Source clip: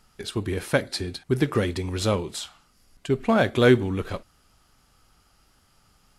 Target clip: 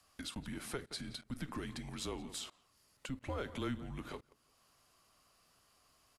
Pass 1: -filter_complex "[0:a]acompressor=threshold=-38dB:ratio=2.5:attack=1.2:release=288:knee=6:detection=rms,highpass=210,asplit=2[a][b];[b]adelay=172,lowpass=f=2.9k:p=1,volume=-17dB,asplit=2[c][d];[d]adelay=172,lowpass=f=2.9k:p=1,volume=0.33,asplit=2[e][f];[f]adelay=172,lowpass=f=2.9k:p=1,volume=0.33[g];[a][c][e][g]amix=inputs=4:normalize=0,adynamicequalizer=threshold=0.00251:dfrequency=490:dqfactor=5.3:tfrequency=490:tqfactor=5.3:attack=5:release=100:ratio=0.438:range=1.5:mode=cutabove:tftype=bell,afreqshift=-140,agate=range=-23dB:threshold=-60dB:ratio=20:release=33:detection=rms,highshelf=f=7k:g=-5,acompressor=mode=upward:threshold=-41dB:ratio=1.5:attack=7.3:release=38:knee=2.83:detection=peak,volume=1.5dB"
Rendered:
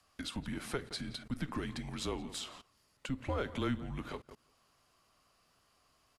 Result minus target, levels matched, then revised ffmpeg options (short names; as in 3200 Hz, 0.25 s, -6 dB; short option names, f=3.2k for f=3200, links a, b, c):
compressor: peak gain reduction -5 dB; 8000 Hz band -3.5 dB
-filter_complex "[0:a]acompressor=threshold=-46dB:ratio=2.5:attack=1.2:release=288:knee=6:detection=rms,highpass=210,asplit=2[a][b];[b]adelay=172,lowpass=f=2.9k:p=1,volume=-17dB,asplit=2[c][d];[d]adelay=172,lowpass=f=2.9k:p=1,volume=0.33,asplit=2[e][f];[f]adelay=172,lowpass=f=2.9k:p=1,volume=0.33[g];[a][c][e][g]amix=inputs=4:normalize=0,adynamicequalizer=threshold=0.00251:dfrequency=490:dqfactor=5.3:tfrequency=490:tqfactor=5.3:attack=5:release=100:ratio=0.438:range=1.5:mode=cutabove:tftype=bell,afreqshift=-140,agate=range=-23dB:threshold=-60dB:ratio=20:release=33:detection=rms,highshelf=f=7k:g=2.5,acompressor=mode=upward:threshold=-41dB:ratio=1.5:attack=7.3:release=38:knee=2.83:detection=peak,volume=1.5dB"